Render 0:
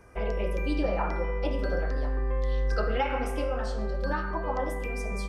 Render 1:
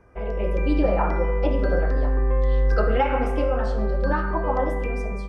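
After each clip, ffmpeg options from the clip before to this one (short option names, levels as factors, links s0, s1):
-af "lowpass=f=1600:p=1,dynaudnorm=f=120:g=7:m=2.37"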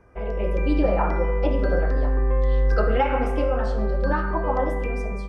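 -af anull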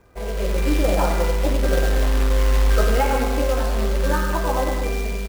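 -af "aecho=1:1:96.21|195.3:0.398|0.355,acrusher=bits=3:mode=log:mix=0:aa=0.000001"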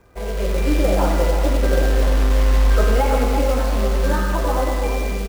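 -filter_complex "[0:a]acrossover=split=820[s0][s1];[s1]asoftclip=type=tanh:threshold=0.0596[s2];[s0][s2]amix=inputs=2:normalize=0,aecho=1:1:345:0.447,volume=1.19"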